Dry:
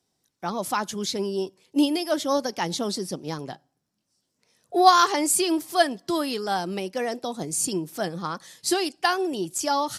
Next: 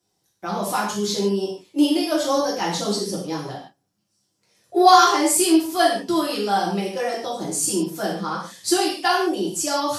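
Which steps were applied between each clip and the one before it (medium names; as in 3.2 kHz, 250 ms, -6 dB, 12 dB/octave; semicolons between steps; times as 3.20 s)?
gated-style reverb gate 190 ms falling, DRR -6 dB; trim -3.5 dB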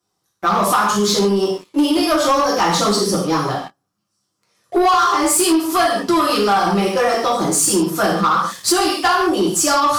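peaking EQ 1.2 kHz +13 dB 0.45 oct; compression 5:1, threshold -20 dBFS, peak gain reduction 15.5 dB; waveshaping leveller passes 2; trim +2.5 dB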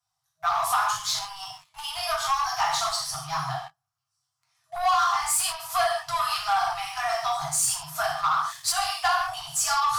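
FFT band-reject 160–640 Hz; trim -7.5 dB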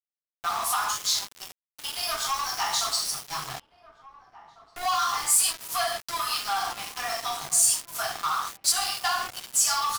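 treble shelf 2.3 kHz +10.5 dB; small samples zeroed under -25.5 dBFS; echo from a far wall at 300 m, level -16 dB; trim -6 dB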